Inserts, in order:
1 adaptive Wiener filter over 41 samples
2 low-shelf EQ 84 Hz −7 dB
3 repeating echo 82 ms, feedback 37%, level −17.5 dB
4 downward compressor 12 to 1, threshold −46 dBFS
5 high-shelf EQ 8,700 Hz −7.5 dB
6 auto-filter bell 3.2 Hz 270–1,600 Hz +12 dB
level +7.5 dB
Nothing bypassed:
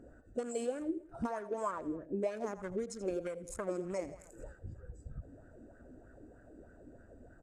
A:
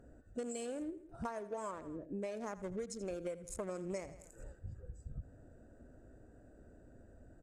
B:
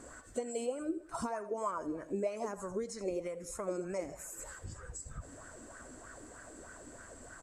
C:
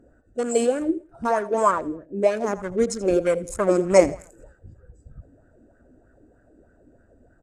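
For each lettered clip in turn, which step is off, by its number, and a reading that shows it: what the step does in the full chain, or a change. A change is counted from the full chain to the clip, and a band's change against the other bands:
6, change in integrated loudness −4.5 LU
1, 8 kHz band +5.5 dB
4, change in crest factor +5.5 dB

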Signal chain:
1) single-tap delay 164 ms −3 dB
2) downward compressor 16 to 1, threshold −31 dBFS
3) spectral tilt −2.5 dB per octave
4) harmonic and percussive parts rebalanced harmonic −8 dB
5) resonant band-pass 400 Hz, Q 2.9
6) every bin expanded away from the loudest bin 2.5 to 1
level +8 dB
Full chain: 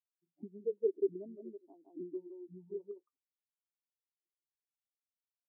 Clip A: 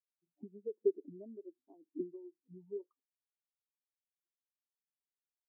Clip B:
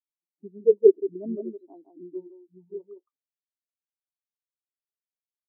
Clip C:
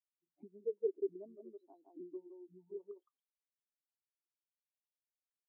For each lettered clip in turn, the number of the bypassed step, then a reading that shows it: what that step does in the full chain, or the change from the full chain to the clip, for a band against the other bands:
1, change in momentary loudness spread +1 LU
2, average gain reduction 11.0 dB
3, change in integrated loudness −3.5 LU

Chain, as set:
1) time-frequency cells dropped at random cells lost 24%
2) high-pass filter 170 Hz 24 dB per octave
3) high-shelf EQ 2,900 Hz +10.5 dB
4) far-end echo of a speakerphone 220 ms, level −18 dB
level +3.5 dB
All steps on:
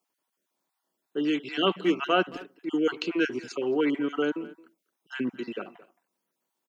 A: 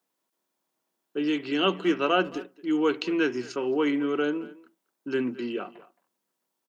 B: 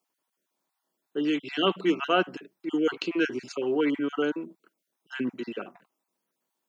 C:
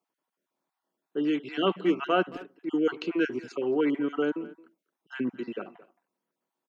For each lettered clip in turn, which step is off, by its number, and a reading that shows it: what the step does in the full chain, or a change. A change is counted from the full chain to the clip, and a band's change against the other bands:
1, change in momentary loudness spread −2 LU
4, echo-to-direct ratio −19.5 dB to none audible
3, 4 kHz band −5.0 dB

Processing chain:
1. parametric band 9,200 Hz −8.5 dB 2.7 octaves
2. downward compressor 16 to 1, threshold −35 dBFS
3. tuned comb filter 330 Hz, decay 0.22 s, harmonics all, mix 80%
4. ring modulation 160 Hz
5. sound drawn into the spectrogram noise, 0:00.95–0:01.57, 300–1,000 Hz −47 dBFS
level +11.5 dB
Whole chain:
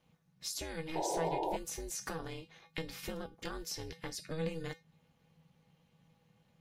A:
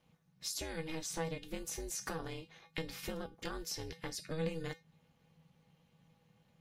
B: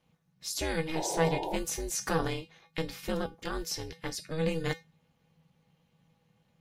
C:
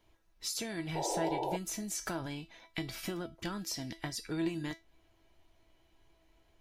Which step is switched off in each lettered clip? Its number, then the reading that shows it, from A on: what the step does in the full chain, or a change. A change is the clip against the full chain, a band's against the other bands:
5, 1 kHz band −8.0 dB
2, average gain reduction 6.5 dB
4, change in momentary loudness spread −2 LU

